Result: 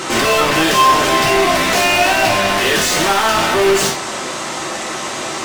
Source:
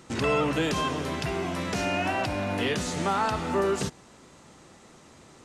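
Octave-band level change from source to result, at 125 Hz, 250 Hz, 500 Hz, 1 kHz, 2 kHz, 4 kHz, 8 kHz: +5.0 dB, +9.0 dB, +13.0 dB, +16.0 dB, +17.0 dB, +18.5 dB, +20.0 dB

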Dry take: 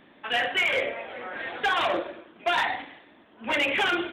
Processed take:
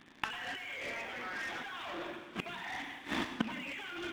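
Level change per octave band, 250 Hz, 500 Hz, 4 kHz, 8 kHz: -5.0 dB, -16.0 dB, -13.5 dB, -6.0 dB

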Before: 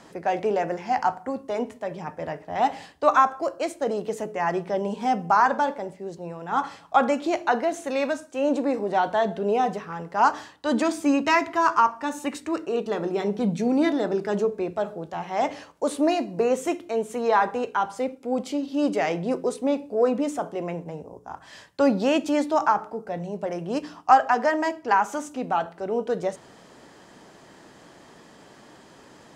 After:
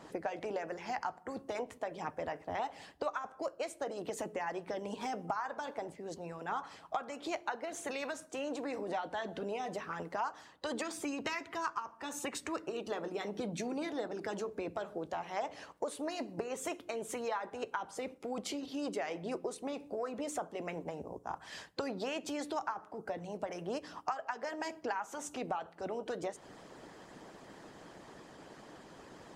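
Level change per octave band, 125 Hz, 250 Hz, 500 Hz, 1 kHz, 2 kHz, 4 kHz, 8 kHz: -13.5 dB, -15.5 dB, -13.5 dB, -16.0 dB, -12.5 dB, -8.5 dB, -5.5 dB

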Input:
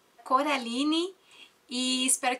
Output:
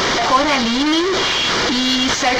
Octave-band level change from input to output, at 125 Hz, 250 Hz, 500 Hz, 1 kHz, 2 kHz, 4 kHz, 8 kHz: no reading, +11.5 dB, +14.0 dB, +12.0 dB, +17.0 dB, +15.5 dB, +6.0 dB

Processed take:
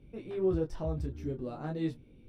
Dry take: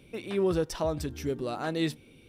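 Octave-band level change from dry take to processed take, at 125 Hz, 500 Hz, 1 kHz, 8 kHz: -0.5 dB, -4.5 dB, -9.0 dB, under -15 dB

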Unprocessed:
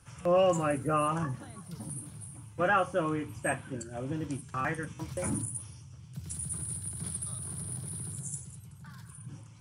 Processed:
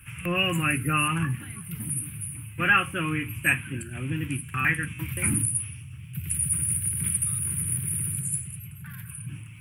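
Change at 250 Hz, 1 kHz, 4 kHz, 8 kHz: +4.0 dB, +1.0 dB, +13.5 dB, +11.0 dB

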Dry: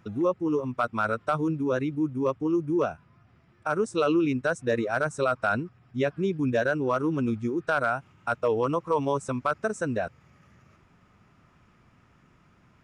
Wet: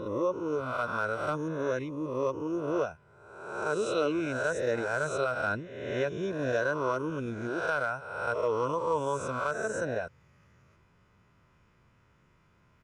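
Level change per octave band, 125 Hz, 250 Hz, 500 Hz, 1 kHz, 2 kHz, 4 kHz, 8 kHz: -6.0 dB, -8.0 dB, -3.0 dB, -3.5 dB, -1.5 dB, -2.0 dB, 0.0 dB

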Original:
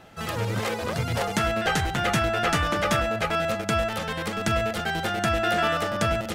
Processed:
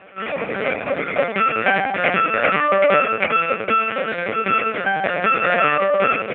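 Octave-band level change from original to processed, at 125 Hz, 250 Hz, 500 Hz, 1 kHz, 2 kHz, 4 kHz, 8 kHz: -8.0 dB, +0.5 dB, +7.0 dB, +7.5 dB, +8.5 dB, -1.5 dB, under -40 dB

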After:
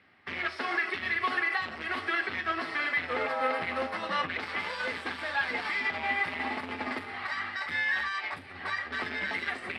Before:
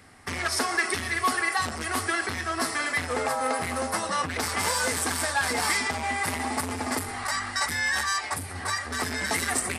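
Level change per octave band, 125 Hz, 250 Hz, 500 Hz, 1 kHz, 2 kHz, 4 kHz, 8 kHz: -13.0 dB, -7.0 dB, -4.5 dB, -5.0 dB, -1.5 dB, -7.0 dB, under -25 dB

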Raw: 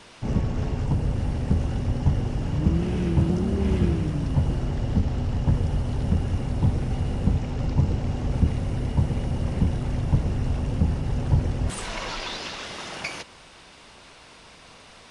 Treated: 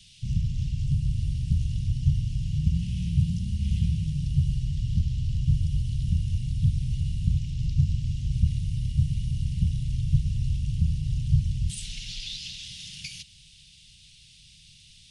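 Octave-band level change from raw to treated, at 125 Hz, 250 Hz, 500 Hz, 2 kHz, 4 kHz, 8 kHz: -1.0 dB, -7.0 dB, under -40 dB, under -10 dB, -1.0 dB, -1.0 dB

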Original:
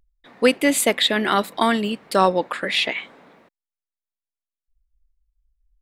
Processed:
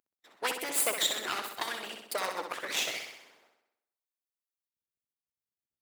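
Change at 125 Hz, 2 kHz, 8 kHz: -25.5 dB, -11.5 dB, -5.0 dB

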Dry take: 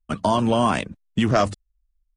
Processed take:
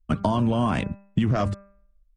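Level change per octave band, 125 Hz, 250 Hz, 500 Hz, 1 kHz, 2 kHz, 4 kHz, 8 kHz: +2.0 dB, -1.0 dB, -6.0 dB, -6.0 dB, -5.5 dB, -8.0 dB, under -10 dB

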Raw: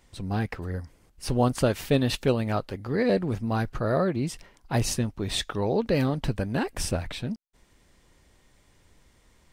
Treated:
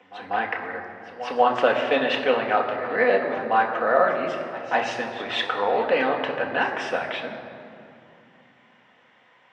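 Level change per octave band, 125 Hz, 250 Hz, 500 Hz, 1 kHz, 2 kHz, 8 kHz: -18.5 dB, -5.5 dB, +5.0 dB, +11.5 dB, +11.5 dB, under -10 dB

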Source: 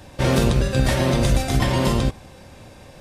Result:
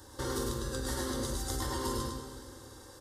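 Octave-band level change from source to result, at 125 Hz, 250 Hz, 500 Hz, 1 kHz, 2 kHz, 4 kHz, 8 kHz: -19.5 dB, -15.5 dB, -14.5 dB, -12.0 dB, -16.0 dB, -12.0 dB, -6.5 dB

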